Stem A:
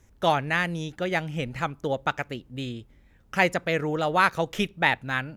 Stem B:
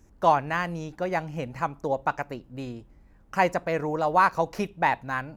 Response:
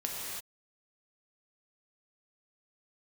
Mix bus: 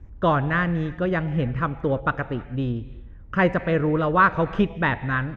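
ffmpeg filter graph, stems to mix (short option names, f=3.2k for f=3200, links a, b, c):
-filter_complex "[0:a]volume=-2dB,asplit=2[a][b];[b]volume=-14dB[c];[1:a]lowshelf=f=130:t=q:w=1.5:g=6.5,adelay=0.7,volume=0.5dB[d];[2:a]atrim=start_sample=2205[e];[c][e]afir=irnorm=-1:irlink=0[f];[a][d][f]amix=inputs=3:normalize=0,lowpass=2.1k,lowshelf=f=310:g=6.5"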